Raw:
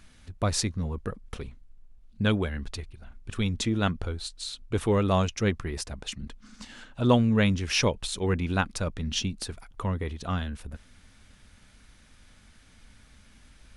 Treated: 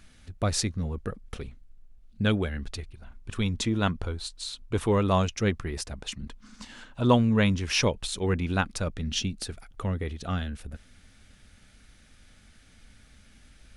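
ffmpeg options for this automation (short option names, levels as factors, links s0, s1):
-af "asetnsamples=n=441:p=0,asendcmd='2.93 equalizer g 4;5.18 equalizer g -2.5;6.04 equalizer g 4;7.83 equalizer g -2;8.88 equalizer g -10',equalizer=f=1000:t=o:w=0.23:g=-6"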